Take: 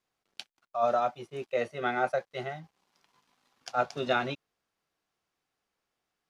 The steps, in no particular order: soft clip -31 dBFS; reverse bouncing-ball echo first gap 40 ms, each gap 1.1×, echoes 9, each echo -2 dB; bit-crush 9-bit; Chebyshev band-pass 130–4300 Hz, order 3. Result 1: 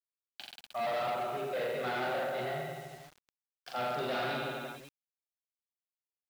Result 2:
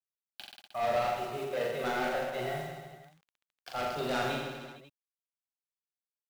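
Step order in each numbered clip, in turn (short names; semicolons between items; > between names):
reverse bouncing-ball echo > soft clip > Chebyshev band-pass > bit-crush; Chebyshev band-pass > soft clip > bit-crush > reverse bouncing-ball echo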